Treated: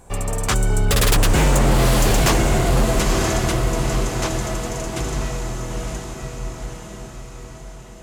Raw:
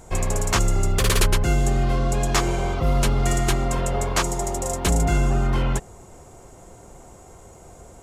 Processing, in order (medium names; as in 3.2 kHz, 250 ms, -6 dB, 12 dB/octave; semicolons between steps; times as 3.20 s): Doppler pass-by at 1.62 s, 29 m/s, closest 15 m; echo that smears into a reverb 950 ms, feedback 51%, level -4 dB; wavefolder -18.5 dBFS; trim +8.5 dB